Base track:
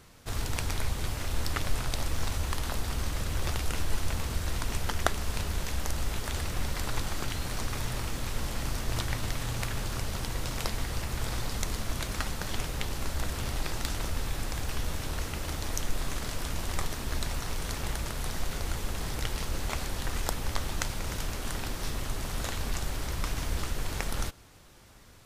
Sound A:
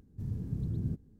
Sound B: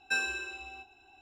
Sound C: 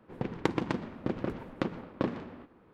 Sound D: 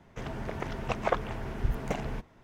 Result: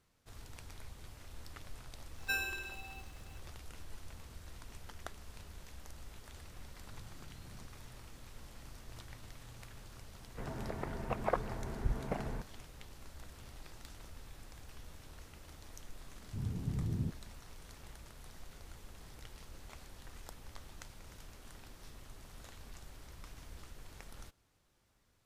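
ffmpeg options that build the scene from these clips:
-filter_complex "[1:a]asplit=2[s0][s1];[0:a]volume=0.106[s2];[2:a]aexciter=amount=8.1:drive=7.6:freq=11000[s3];[s0]acompressor=threshold=0.00501:ratio=6:attack=3.2:release=140:knee=1:detection=peak[s4];[4:a]lowpass=1900[s5];[s1]lowpass=f=910:t=q:w=2.5[s6];[s3]atrim=end=1.21,asetpts=PTS-STARTPTS,volume=0.562,afade=t=in:d=0.004:c=hsin,afade=t=out:st=1.206:d=0.004:c=hsin,adelay=2180[s7];[s4]atrim=end=1.19,asetpts=PTS-STARTPTS,volume=0.398,afade=t=in:d=0.004:c=hsin,afade=t=out:st=1.186:d=0.004:c=hsin,adelay=6710[s8];[s5]atrim=end=2.43,asetpts=PTS-STARTPTS,volume=0.562,afade=t=in:d=0.004:c=hsin,afade=t=out:st=2.426:d=0.004:c=hsin,adelay=10210[s9];[s6]atrim=end=1.19,asetpts=PTS-STARTPTS,volume=0.75,afade=t=in:d=0.004:c=hsin,afade=t=out:st=1.186:d=0.004:c=hsin,adelay=16150[s10];[s2][s7][s8][s9][s10]amix=inputs=5:normalize=0"

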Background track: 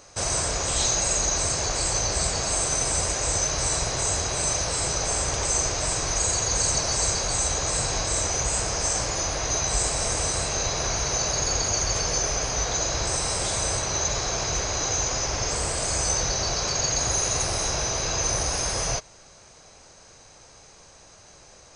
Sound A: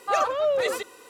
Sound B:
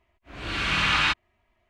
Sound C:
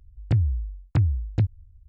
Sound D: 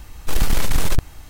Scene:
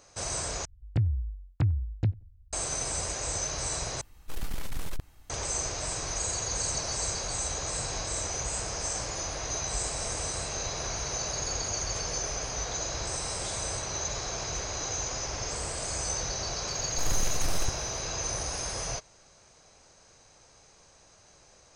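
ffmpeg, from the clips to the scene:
-filter_complex "[4:a]asplit=2[s0][s1];[0:a]volume=0.422[s2];[3:a]asplit=2[s3][s4];[s4]adelay=89,lowpass=f=1100:p=1,volume=0.0631,asplit=2[s5][s6];[s6]adelay=89,lowpass=f=1100:p=1,volume=0.24[s7];[s3][s5][s7]amix=inputs=3:normalize=0[s8];[s1]aeval=exprs='if(lt(val(0),0),0.708*val(0),val(0))':c=same[s9];[s2]asplit=3[s10][s11][s12];[s10]atrim=end=0.654[s13];[s8]atrim=end=1.88,asetpts=PTS-STARTPTS,volume=0.562[s14];[s11]atrim=start=2.526:end=4.014[s15];[s0]atrim=end=1.29,asetpts=PTS-STARTPTS,volume=0.158[s16];[s12]atrim=start=5.296[s17];[s9]atrim=end=1.29,asetpts=PTS-STARTPTS,volume=0.266,afade=t=in:d=0.004:c=hsin,afade=t=out:st=1.286:d=0.004:c=hsin,adelay=16700[s18];[s13][s14]acrossfade=d=0.004:c1=hsin:c2=hsin[s19];[s19][s15]acrossfade=d=0.004:c1=hsin:c2=hsin[s20];[s20][s16]acrossfade=d=0.004:c1=hsin:c2=hsin[s21];[s21][s17]acrossfade=d=0.004:c1=hsin:c2=hsin[s22];[s22][s18]amix=inputs=2:normalize=0"

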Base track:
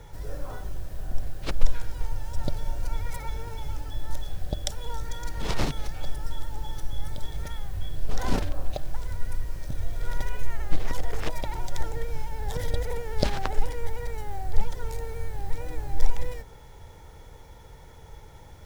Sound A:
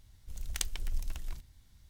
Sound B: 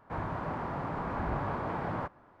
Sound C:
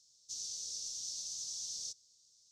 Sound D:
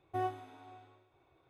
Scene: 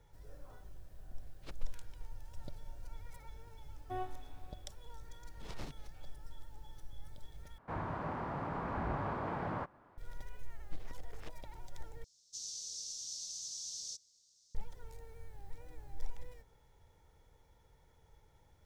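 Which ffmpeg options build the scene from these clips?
-filter_complex "[0:a]volume=0.119[s0];[1:a]acompressor=threshold=0.00891:ratio=6:attack=3.2:release=140:knee=1:detection=peak[s1];[s0]asplit=3[s2][s3][s4];[s2]atrim=end=7.584[s5];[2:a]atrim=end=2.4,asetpts=PTS-STARTPTS,volume=0.631[s6];[s3]atrim=start=9.976:end=12.044[s7];[3:a]atrim=end=2.51,asetpts=PTS-STARTPTS,volume=0.794[s8];[s4]atrim=start=14.546[s9];[s1]atrim=end=1.89,asetpts=PTS-STARTPTS,volume=0.224,afade=t=in:d=0.004:c=hsin,afade=t=out:st=1.886:d=0.004:c=hsin,adelay=1180[s10];[4:a]atrim=end=1.49,asetpts=PTS-STARTPTS,volume=0.501,afade=t=in:d=0.004:c=hsin,afade=t=out:st=1.486:d=0.004:c=hsin,adelay=3760[s11];[s5][s6]acrossfade=d=0.004:c1=hsin:c2=hsin[s12];[s12][s7]acrossfade=d=0.004:c1=hsin:c2=hsin[s13];[s13][s8]acrossfade=d=0.004:c1=hsin:c2=hsin[s14];[s14][s9]acrossfade=d=0.004:c1=hsin:c2=hsin[s15];[s15][s10][s11]amix=inputs=3:normalize=0"

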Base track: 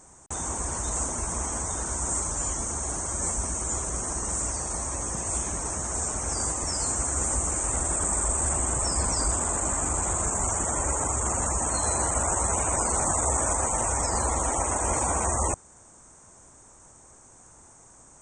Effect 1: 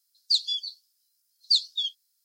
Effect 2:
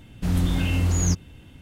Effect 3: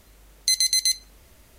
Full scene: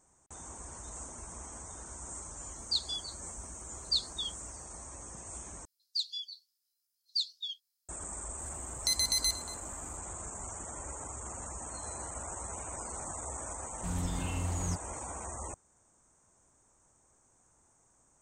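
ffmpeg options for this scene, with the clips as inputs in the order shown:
-filter_complex "[1:a]asplit=2[s0][s1];[0:a]volume=0.168[s2];[3:a]asplit=2[s3][s4];[s4]adelay=233.2,volume=0.2,highshelf=f=4000:g=-5.25[s5];[s3][s5]amix=inputs=2:normalize=0[s6];[2:a]agate=range=0.0224:threshold=0.0112:ratio=3:release=100:detection=peak[s7];[s2]asplit=2[s8][s9];[s8]atrim=end=5.654[s10];[s1]atrim=end=2.24,asetpts=PTS-STARTPTS,volume=0.299[s11];[s9]atrim=start=7.886[s12];[s0]atrim=end=2.24,asetpts=PTS-STARTPTS,volume=0.376,afade=t=in:d=0.004:c=hsin,afade=t=out:st=2.236:d=0.004:c=hsin,adelay=2410[s13];[s6]atrim=end=1.58,asetpts=PTS-STARTPTS,volume=0.355,afade=t=in:d=0.004:c=hsin,afade=t=out:st=1.576:d=0.004:c=hsin,adelay=8390[s14];[s7]atrim=end=1.61,asetpts=PTS-STARTPTS,volume=0.224,afade=t=in:d=0.004:c=hsin,afade=t=out:st=1.606:d=0.004:c=hsin,adelay=13610[s15];[s10][s11]acrossfade=d=0.004:c1=hsin:c2=hsin[s16];[s16][s12]acrossfade=d=0.004:c1=hsin:c2=hsin[s17];[s17][s13][s14][s15]amix=inputs=4:normalize=0"

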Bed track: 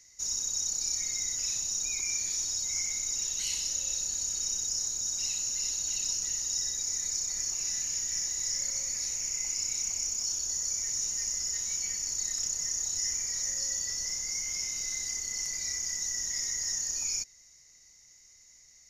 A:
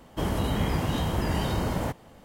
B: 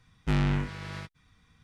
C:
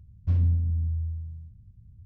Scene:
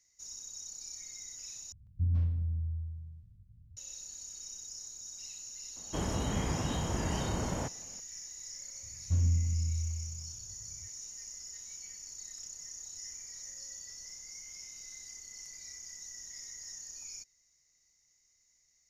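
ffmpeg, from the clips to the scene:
-filter_complex "[3:a]asplit=2[s0][s1];[0:a]volume=0.211[s2];[s0]acrossover=split=330[s3][s4];[s4]adelay=150[s5];[s3][s5]amix=inputs=2:normalize=0[s6];[1:a]lowpass=9600[s7];[s2]asplit=2[s8][s9];[s8]atrim=end=1.724[s10];[s6]atrim=end=2.05,asetpts=PTS-STARTPTS,volume=0.473[s11];[s9]atrim=start=3.766[s12];[s7]atrim=end=2.24,asetpts=PTS-STARTPTS,volume=0.473,afade=t=in:d=0.004:c=hsin,afade=t=out:st=2.236:d=0.004:c=hsin,adelay=5760[s13];[s1]atrim=end=2.05,asetpts=PTS-STARTPTS,volume=0.562,afade=t=in:d=0.004:c=hsin,afade=t=out:st=2.046:d=0.004:c=hsin,adelay=8830[s14];[s10][s11]acrossfade=d=0.004:c1=hsin:c2=hsin[s15];[s15][s12]acrossfade=d=0.004:c1=hsin:c2=hsin[s16];[s16][s13][s14]amix=inputs=3:normalize=0"

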